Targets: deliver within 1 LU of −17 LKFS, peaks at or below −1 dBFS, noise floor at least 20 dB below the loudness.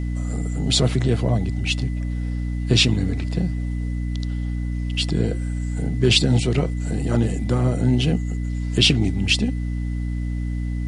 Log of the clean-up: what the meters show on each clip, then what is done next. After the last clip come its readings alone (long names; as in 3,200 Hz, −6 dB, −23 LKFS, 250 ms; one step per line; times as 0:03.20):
mains hum 60 Hz; hum harmonics up to 300 Hz; level of the hum −22 dBFS; interfering tone 2,000 Hz; level of the tone −46 dBFS; integrated loudness −22.0 LKFS; sample peak −3.0 dBFS; target loudness −17.0 LKFS
→ mains-hum notches 60/120/180/240/300 Hz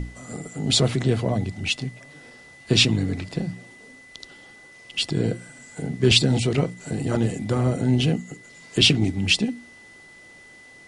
mains hum none found; interfering tone 2,000 Hz; level of the tone −46 dBFS
→ notch filter 2,000 Hz, Q 30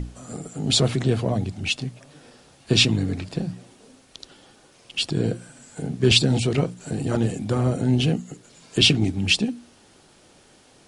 interfering tone none found; integrated loudness −22.5 LKFS; sample peak −3.0 dBFS; target loudness −17.0 LKFS
→ level +5.5 dB
brickwall limiter −1 dBFS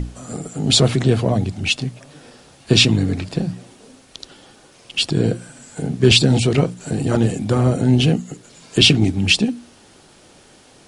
integrated loudness −17.0 LKFS; sample peak −1.0 dBFS; background noise floor −49 dBFS